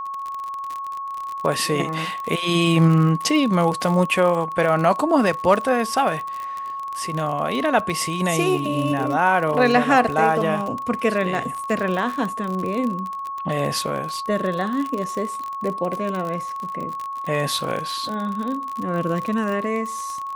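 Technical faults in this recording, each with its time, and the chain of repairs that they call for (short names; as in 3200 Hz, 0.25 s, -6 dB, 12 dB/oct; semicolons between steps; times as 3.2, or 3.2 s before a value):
crackle 41/s -25 dBFS
tone 1100 Hz -27 dBFS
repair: de-click; notch 1100 Hz, Q 30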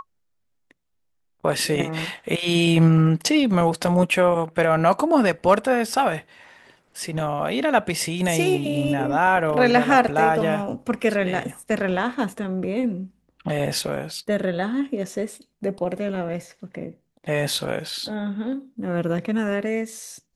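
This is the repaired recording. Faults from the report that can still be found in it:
none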